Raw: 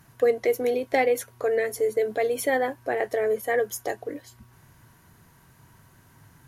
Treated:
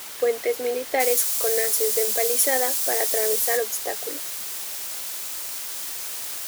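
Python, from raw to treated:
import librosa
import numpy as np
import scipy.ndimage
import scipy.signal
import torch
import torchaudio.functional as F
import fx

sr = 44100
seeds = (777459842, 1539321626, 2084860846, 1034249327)

y = fx.quant_dither(x, sr, seeds[0], bits=6, dither='triangular')
y = fx.bass_treble(y, sr, bass_db=-13, treble_db=fx.steps((0.0, -1.0), (0.99, 13.0), (3.56, 5.0)))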